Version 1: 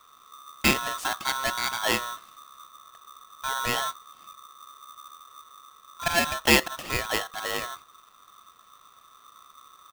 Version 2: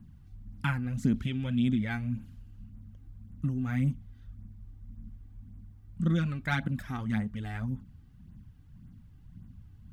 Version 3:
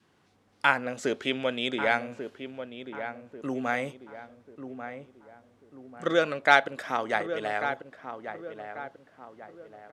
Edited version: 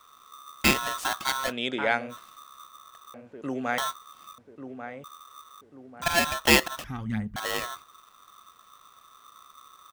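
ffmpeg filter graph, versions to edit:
-filter_complex "[2:a]asplit=4[a][b][c][d];[0:a]asplit=6[e][f][g][h][i][j];[e]atrim=end=1.53[k];[a]atrim=start=1.43:end=2.19[l];[f]atrim=start=2.09:end=3.142[m];[b]atrim=start=3.138:end=3.782[n];[g]atrim=start=3.778:end=4.382[o];[c]atrim=start=4.378:end=5.042[p];[h]atrim=start=5.038:end=5.612[q];[d]atrim=start=5.608:end=6.022[r];[i]atrim=start=6.018:end=6.842[s];[1:a]atrim=start=6.838:end=7.362[t];[j]atrim=start=7.358[u];[k][l]acrossfade=d=0.1:c1=tri:c2=tri[v];[v][m]acrossfade=d=0.1:c1=tri:c2=tri[w];[w][n]acrossfade=d=0.004:c1=hsin:c2=hsin[x];[x][o]acrossfade=d=0.004:c1=hsin:c2=hsin[y];[y][p]acrossfade=d=0.004:c1=hsin:c2=hsin[z];[z][q]acrossfade=d=0.004:c1=hsin:c2=hsin[aa];[aa][r]acrossfade=d=0.004:c1=hsin:c2=hsin[ab];[ab][s]acrossfade=d=0.004:c1=hsin:c2=hsin[ac];[ac][t]acrossfade=d=0.004:c1=hsin:c2=hsin[ad];[ad][u]acrossfade=d=0.004:c1=hsin:c2=hsin"

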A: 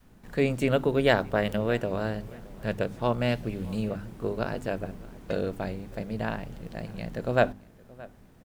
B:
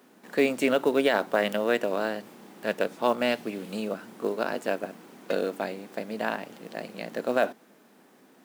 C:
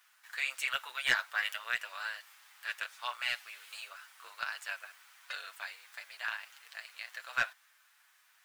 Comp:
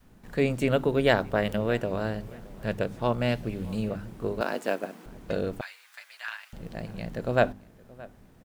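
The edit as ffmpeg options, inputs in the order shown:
-filter_complex "[0:a]asplit=3[a][b][c];[a]atrim=end=4.412[d];[1:a]atrim=start=4.408:end=5.062[e];[b]atrim=start=5.058:end=5.612[f];[2:a]atrim=start=5.608:end=6.532[g];[c]atrim=start=6.528[h];[d][e]acrossfade=d=0.004:c1=hsin:c2=hsin[i];[i][f]acrossfade=d=0.004:c1=hsin:c2=hsin[j];[j][g]acrossfade=d=0.004:c1=hsin:c2=hsin[k];[k][h]acrossfade=d=0.004:c1=hsin:c2=hsin"

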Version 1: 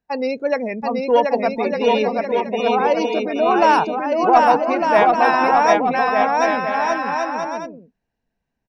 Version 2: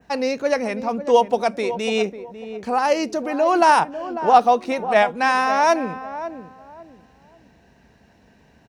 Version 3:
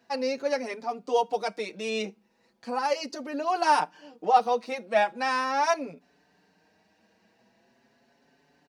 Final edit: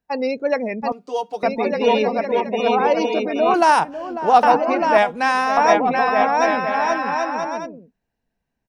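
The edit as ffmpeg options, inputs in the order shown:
-filter_complex "[1:a]asplit=2[a][b];[0:a]asplit=4[c][d][e][f];[c]atrim=end=0.922[g];[2:a]atrim=start=0.918:end=1.432[h];[d]atrim=start=1.428:end=3.542[i];[a]atrim=start=3.538:end=4.432[j];[e]atrim=start=4.428:end=4.982[k];[b]atrim=start=4.978:end=5.572[l];[f]atrim=start=5.568[m];[g][h]acrossfade=d=0.004:c1=hsin:c2=hsin[n];[n][i]acrossfade=d=0.004:c1=hsin:c2=hsin[o];[o][j]acrossfade=d=0.004:c1=hsin:c2=hsin[p];[p][k]acrossfade=d=0.004:c1=hsin:c2=hsin[q];[q][l]acrossfade=d=0.004:c1=hsin:c2=hsin[r];[r][m]acrossfade=d=0.004:c1=hsin:c2=hsin"

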